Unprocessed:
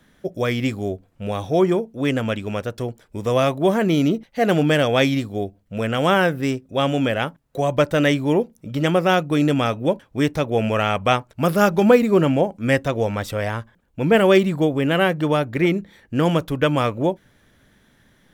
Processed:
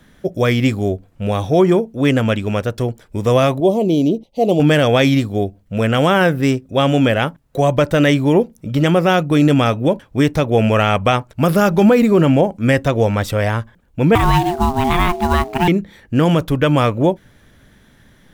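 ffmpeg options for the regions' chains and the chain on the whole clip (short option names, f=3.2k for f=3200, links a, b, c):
-filter_complex "[0:a]asettb=1/sr,asplit=3[a][b][c];[a]atrim=end=3.604[d];[b]atrim=start=3.6:end=4.6,asetpts=PTS-STARTPTS,afade=t=in:d=0.004:c=qsin,afade=t=out:st=0.996:d=0.004:c=qsin,asuperstop=centerf=1600:order=4:qfactor=0.56,bass=f=250:g=-8,treble=f=4k:g=-8[e];[c]atrim=start=4.596[f];[d][e]acrossfade=d=0.004:c1=hsin:c2=qsin[g];[g][f]acrossfade=d=0.004:c1=qsin:c2=hsin,asettb=1/sr,asplit=3[h][i][j];[h]atrim=end=14.154[k];[i]atrim=start=14.15:end=15.68,asetpts=PTS-STARTPTS,afade=t=in:d=0.004:c=qsin,afade=t=out:st=1.526:d=0.004:c=qsin,acrusher=bits=5:mode=log:mix=0:aa=0.000001,aeval=exprs='val(0)*sin(2*PI*530*n/s)':c=same[l];[j]atrim=start=15.676[m];[k][l]acrossfade=d=0.004:c1=hsin:c2=qsin[n];[n][m]acrossfade=d=0.004:c1=qsin:c2=hsin,lowshelf=f=130:g=5.5,alimiter=limit=-9.5dB:level=0:latency=1:release=38,volume=5.5dB"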